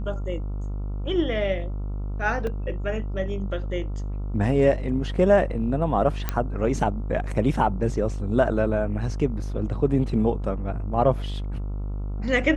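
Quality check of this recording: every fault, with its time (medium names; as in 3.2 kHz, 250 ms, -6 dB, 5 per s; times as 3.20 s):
buzz 50 Hz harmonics 28 -29 dBFS
2.47 s: dropout 2.3 ms
6.29 s: pop -10 dBFS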